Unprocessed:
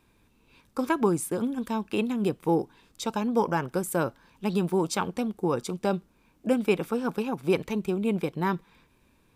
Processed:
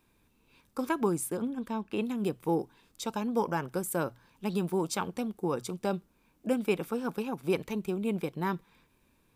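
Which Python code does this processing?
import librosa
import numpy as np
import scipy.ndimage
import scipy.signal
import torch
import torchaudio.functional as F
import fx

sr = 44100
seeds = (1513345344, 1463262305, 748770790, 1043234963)

y = fx.high_shelf(x, sr, hz=11000.0, db=7.5)
y = fx.hum_notches(y, sr, base_hz=60, count=2)
y = fx.high_shelf(y, sr, hz=5000.0, db=-11.0, at=(1.37, 2.01))
y = F.gain(torch.from_numpy(y), -4.5).numpy()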